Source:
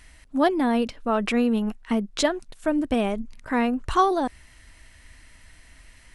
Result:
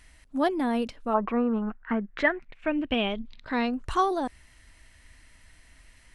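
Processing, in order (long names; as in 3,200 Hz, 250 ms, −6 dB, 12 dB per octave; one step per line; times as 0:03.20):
0:01.13–0:03.72: low-pass with resonance 980 Hz → 4,700 Hz, resonance Q 5
level −4.5 dB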